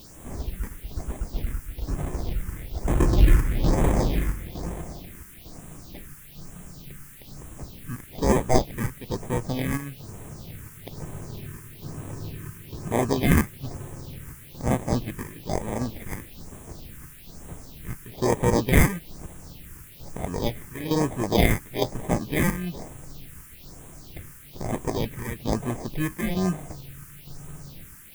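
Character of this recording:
aliases and images of a low sample rate 1,400 Hz, jitter 0%
chopped level 1.1 Hz, depth 60%, duty 75%
a quantiser's noise floor 8 bits, dither triangular
phaser sweep stages 4, 1.1 Hz, lowest notch 630–4,600 Hz

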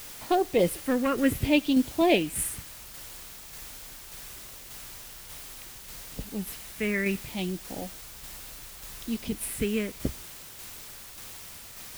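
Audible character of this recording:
phaser sweep stages 4, 0.69 Hz, lowest notch 780–1,600 Hz
a quantiser's noise floor 8 bits, dither triangular
tremolo saw down 1.7 Hz, depth 35%

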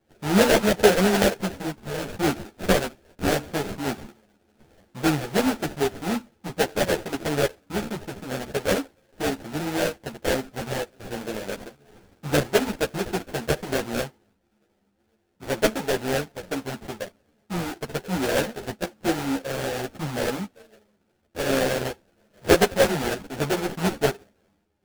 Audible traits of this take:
aliases and images of a low sample rate 1,100 Hz, jitter 20%
a shimmering, thickened sound

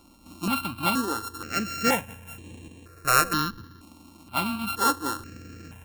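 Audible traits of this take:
a buzz of ramps at a fixed pitch in blocks of 32 samples
notches that jump at a steady rate 2.1 Hz 450–4,900 Hz

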